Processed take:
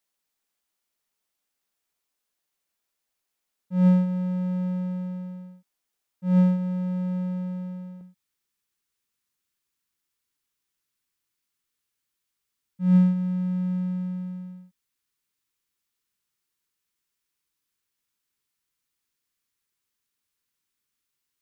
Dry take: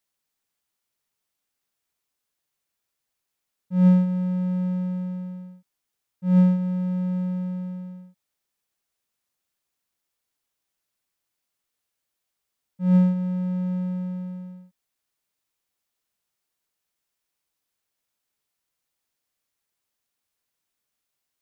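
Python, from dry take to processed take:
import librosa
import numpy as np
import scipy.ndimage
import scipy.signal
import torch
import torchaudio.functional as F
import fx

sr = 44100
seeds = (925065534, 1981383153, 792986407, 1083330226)

y = fx.peak_eq(x, sr, hz=fx.steps((0.0, 110.0), (8.01, 660.0)), db=-14.0, octaves=0.54)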